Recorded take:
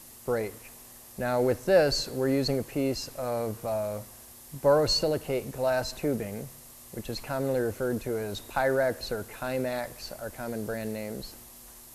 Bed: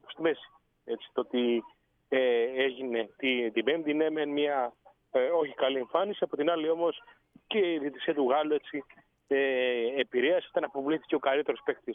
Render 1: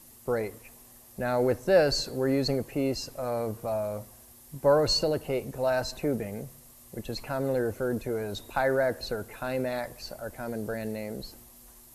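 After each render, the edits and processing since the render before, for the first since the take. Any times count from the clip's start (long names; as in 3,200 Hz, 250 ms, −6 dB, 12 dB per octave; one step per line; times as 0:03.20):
broadband denoise 6 dB, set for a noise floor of −50 dBFS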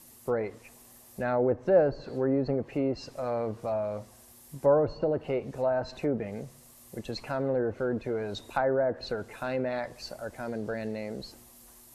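treble cut that deepens with the level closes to 1,000 Hz, closed at −22 dBFS
low-shelf EQ 64 Hz −8.5 dB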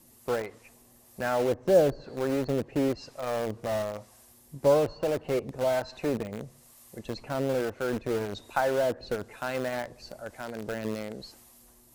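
two-band tremolo in antiphase 1.1 Hz, depth 50%, crossover 640 Hz
in parallel at −8 dB: bit reduction 5 bits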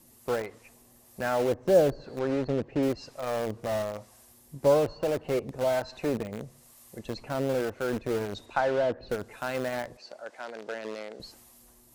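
0:02.19–0:02.83: high-frequency loss of the air 96 metres
0:08.45–0:09.08: low-pass filter 5,800 Hz → 3,100 Hz
0:09.97–0:11.20: band-pass filter 410–5,800 Hz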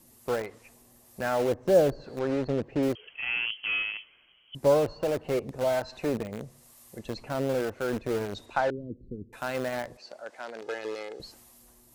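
0:02.95–0:04.55: voice inversion scrambler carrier 3,200 Hz
0:08.70–0:09.33: inverse Chebyshev low-pass filter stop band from 680 Hz
0:10.61–0:11.21: comb filter 2.4 ms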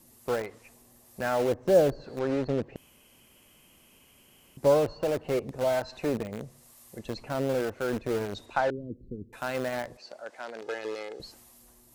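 0:02.76–0:04.57: fill with room tone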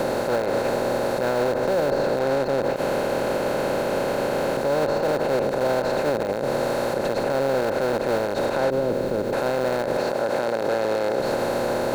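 compressor on every frequency bin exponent 0.2
brickwall limiter −14 dBFS, peak gain reduction 11.5 dB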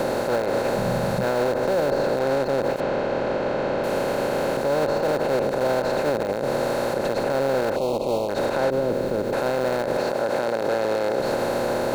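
0:00.77–0:01.24: low shelf with overshoot 230 Hz +7 dB, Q 3
0:02.80–0:03.84: high-frequency loss of the air 150 metres
0:07.76–0:08.29: Chebyshev band-stop filter 1,000–2,800 Hz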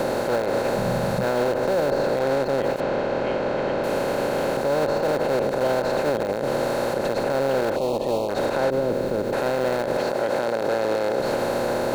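mix in bed −13 dB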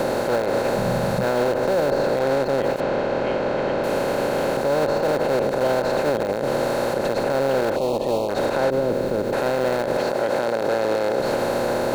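level +1.5 dB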